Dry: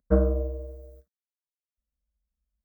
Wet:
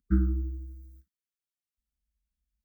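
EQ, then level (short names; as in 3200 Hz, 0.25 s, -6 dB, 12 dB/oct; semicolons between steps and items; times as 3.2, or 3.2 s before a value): brick-wall FIR band-stop 400–1200 Hz; bell 1300 Hz -3 dB 0.99 oct; -1.5 dB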